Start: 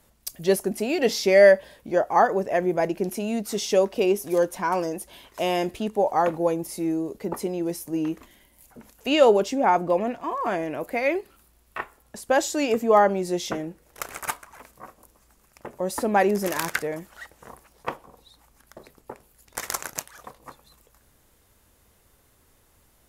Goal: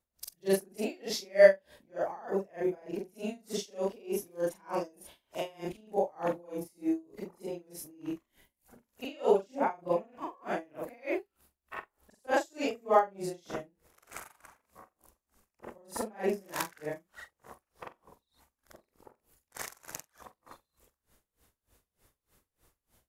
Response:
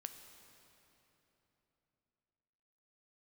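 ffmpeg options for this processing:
-af "afftfilt=real='re':imag='-im':win_size=4096:overlap=0.75,aeval=exprs='val(0)*pow(10,-28*(0.5-0.5*cos(2*PI*3.3*n/s))/20)':c=same"

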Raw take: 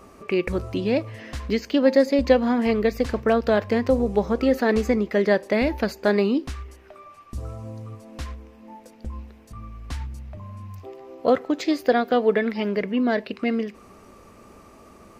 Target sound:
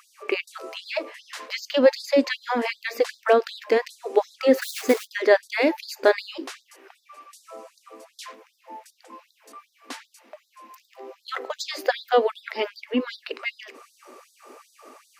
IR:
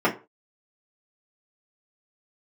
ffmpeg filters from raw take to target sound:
-filter_complex "[0:a]asplit=3[s0][s1][s2];[s0]afade=t=out:st=4.53:d=0.02[s3];[s1]acrusher=bits=4:mode=log:mix=0:aa=0.000001,afade=t=in:st=4.53:d=0.02,afade=t=out:st=5.06:d=0.02[s4];[s2]afade=t=in:st=5.06:d=0.02[s5];[s3][s4][s5]amix=inputs=3:normalize=0,asplit=2[s6][s7];[1:a]atrim=start_sample=2205[s8];[s7][s8]afir=irnorm=-1:irlink=0,volume=0.0119[s9];[s6][s9]amix=inputs=2:normalize=0,afftfilt=real='re*gte(b*sr/1024,230*pow(3600/230,0.5+0.5*sin(2*PI*2.6*pts/sr)))':imag='im*gte(b*sr/1024,230*pow(3600/230,0.5+0.5*sin(2*PI*2.6*pts/sr)))':win_size=1024:overlap=0.75,volume=1.5"

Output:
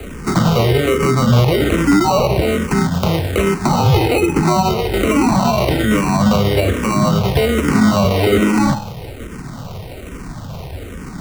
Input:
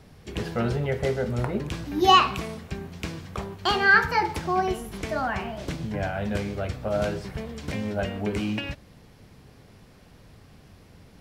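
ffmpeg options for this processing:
-filter_complex "[0:a]bandreject=f=104.9:t=h:w=4,bandreject=f=209.8:t=h:w=4,bandreject=f=314.7:t=h:w=4,bandreject=f=419.6:t=h:w=4,bandreject=f=524.5:t=h:w=4,bandreject=f=629.4:t=h:w=4,bandreject=f=734.3:t=h:w=4,bandreject=f=839.2:t=h:w=4,bandreject=f=944.1:t=h:w=4,bandreject=f=1049:t=h:w=4,bandreject=f=1153.9:t=h:w=4,bandreject=f=1258.8:t=h:w=4,bandreject=f=1363.7:t=h:w=4,bandreject=f=1468.6:t=h:w=4,bandreject=f=1573.5:t=h:w=4,bandreject=f=1678.4:t=h:w=4,bandreject=f=1783.3:t=h:w=4,bandreject=f=1888.2:t=h:w=4,bandreject=f=1993.1:t=h:w=4,bandreject=f=2098:t=h:w=4,bandreject=f=2202.9:t=h:w=4,bandreject=f=2307.8:t=h:w=4,bandreject=f=2412.7:t=h:w=4,bandreject=f=2517.6:t=h:w=4,bandreject=f=2622.5:t=h:w=4,bandreject=f=2727.4:t=h:w=4,bandreject=f=2832.3:t=h:w=4,bandreject=f=2937.2:t=h:w=4,acrusher=samples=26:mix=1:aa=0.000001,acrossover=split=110|370|4800[s0][s1][s2][s3];[s0]acompressor=threshold=0.00501:ratio=4[s4];[s1]acompressor=threshold=0.0282:ratio=4[s5];[s2]acompressor=threshold=0.0178:ratio=4[s6];[s3]acompressor=threshold=0.00316:ratio=4[s7];[s4][s5][s6][s7]amix=inputs=4:normalize=0,alimiter=level_in=20:limit=0.891:release=50:level=0:latency=1,asplit=2[s8][s9];[s9]afreqshift=-1.2[s10];[s8][s10]amix=inputs=2:normalize=1,volume=0.891"

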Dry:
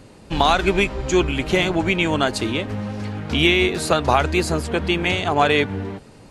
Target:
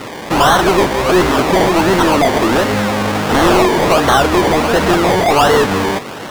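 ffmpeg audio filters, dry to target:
-filter_complex "[0:a]highshelf=f=6400:g=9,acrusher=samples=26:mix=1:aa=0.000001:lfo=1:lforange=15.6:lforate=1.4,asplit=2[s0][s1];[s1]highpass=f=720:p=1,volume=35.5,asoftclip=type=tanh:threshold=0.668[s2];[s0][s2]amix=inputs=2:normalize=0,lowpass=f=4800:p=1,volume=0.501"

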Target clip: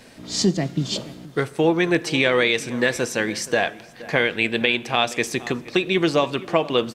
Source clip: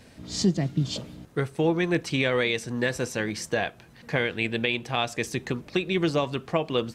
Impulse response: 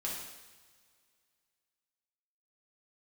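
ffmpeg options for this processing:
-filter_complex "[0:a]equalizer=f=66:w=0.56:g=-12,asplit=2[s0][s1];[s1]adelay=472.3,volume=0.126,highshelf=f=4000:g=-10.6[s2];[s0][s2]amix=inputs=2:normalize=0,asplit=2[s3][s4];[1:a]atrim=start_sample=2205[s5];[s4][s5]afir=irnorm=-1:irlink=0,volume=0.106[s6];[s3][s6]amix=inputs=2:normalize=0,volume=2"

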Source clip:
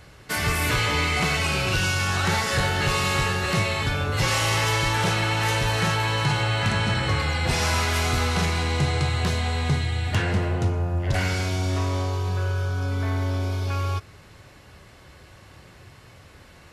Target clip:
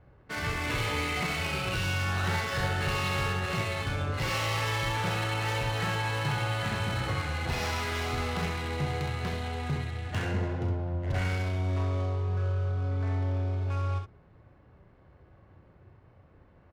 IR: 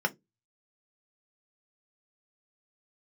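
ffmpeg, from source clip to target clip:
-af "adynamicsmooth=sensitivity=4.5:basefreq=970,aecho=1:1:34|65:0.355|0.531,volume=0.376"

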